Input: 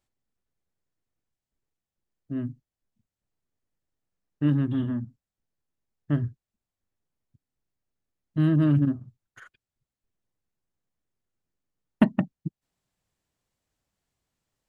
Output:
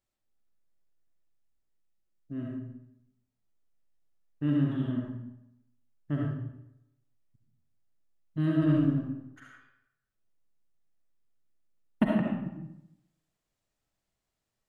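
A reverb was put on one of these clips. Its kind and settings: digital reverb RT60 0.84 s, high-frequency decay 0.75×, pre-delay 25 ms, DRR -2.5 dB; gain -6.5 dB

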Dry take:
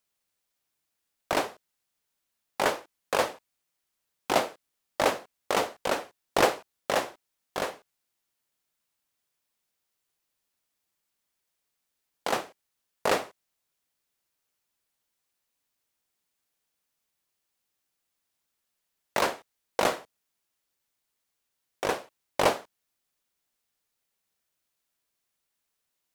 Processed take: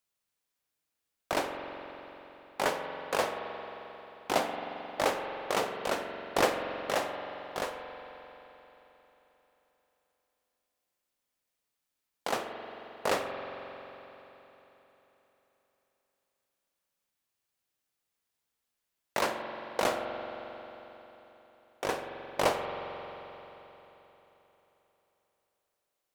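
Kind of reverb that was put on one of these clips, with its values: spring tank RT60 3.7 s, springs 44 ms, chirp 45 ms, DRR 4.5 dB; gain -4 dB

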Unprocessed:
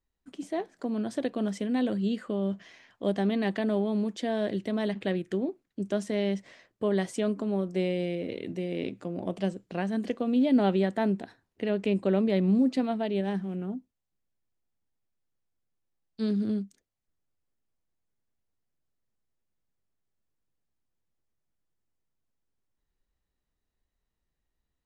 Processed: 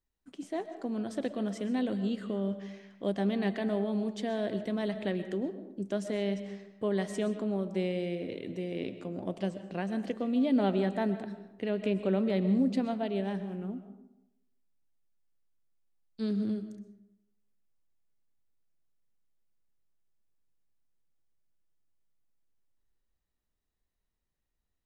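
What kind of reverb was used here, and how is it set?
digital reverb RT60 0.88 s, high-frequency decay 0.5×, pre-delay 85 ms, DRR 10.5 dB; gain -3.5 dB

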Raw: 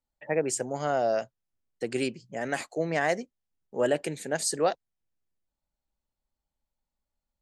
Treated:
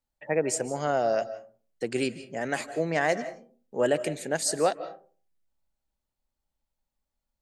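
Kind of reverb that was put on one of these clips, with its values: digital reverb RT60 0.42 s, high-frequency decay 0.4×, pre-delay 0.12 s, DRR 14 dB; gain +1 dB

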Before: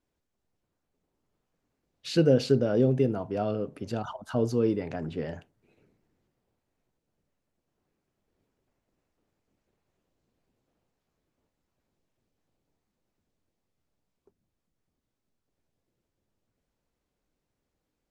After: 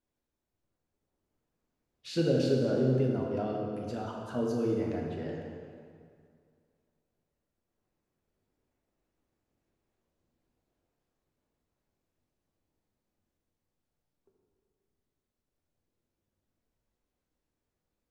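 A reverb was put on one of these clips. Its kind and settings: plate-style reverb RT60 2.2 s, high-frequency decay 0.7×, DRR -1.5 dB; gain -7.5 dB

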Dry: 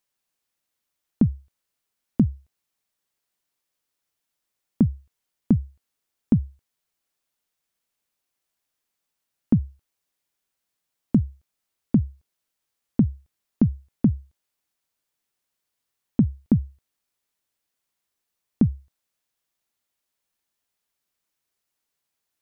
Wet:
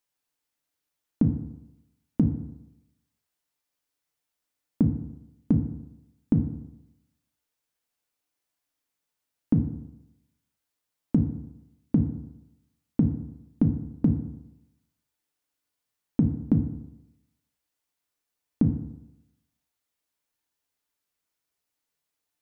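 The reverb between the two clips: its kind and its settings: FDN reverb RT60 0.88 s, low-frequency decay 0.95×, high-frequency decay 0.45×, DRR 4 dB; gain -3.5 dB

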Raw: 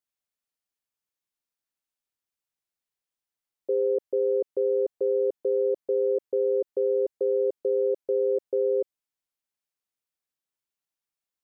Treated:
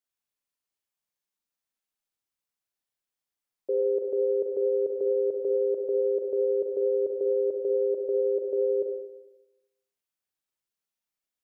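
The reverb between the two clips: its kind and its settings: Schroeder reverb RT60 0.98 s, combs from 30 ms, DRR 2 dB; gain -2 dB

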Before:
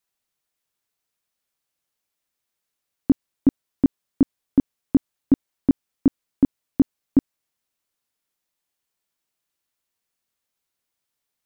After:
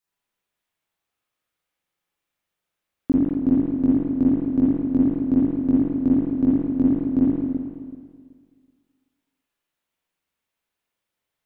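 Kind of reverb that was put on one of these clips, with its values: spring tank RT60 1.9 s, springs 42/54 ms, chirp 75 ms, DRR -7.5 dB; gain -5 dB

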